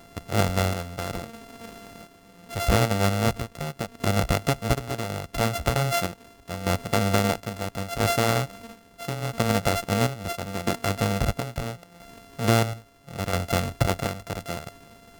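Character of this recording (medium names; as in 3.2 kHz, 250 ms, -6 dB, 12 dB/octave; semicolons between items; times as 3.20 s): a buzz of ramps at a fixed pitch in blocks of 64 samples; chopped level 0.75 Hz, depth 60%, duty 55%; AAC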